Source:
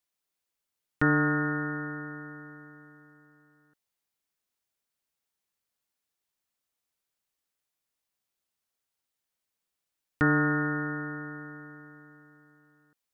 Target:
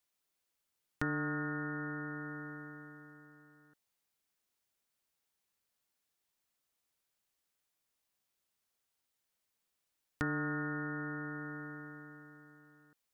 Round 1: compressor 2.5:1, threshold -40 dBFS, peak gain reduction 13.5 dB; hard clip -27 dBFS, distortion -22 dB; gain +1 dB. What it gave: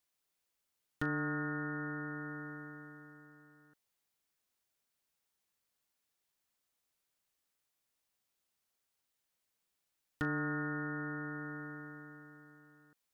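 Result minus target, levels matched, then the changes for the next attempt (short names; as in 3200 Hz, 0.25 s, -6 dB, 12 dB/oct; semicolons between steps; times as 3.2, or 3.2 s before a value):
hard clip: distortion +15 dB
change: hard clip -20 dBFS, distortion -37 dB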